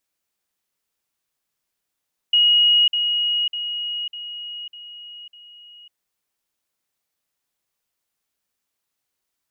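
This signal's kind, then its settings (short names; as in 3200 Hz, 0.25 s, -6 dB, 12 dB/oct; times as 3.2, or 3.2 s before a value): level ladder 2890 Hz -12 dBFS, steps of -6 dB, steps 6, 0.55 s 0.05 s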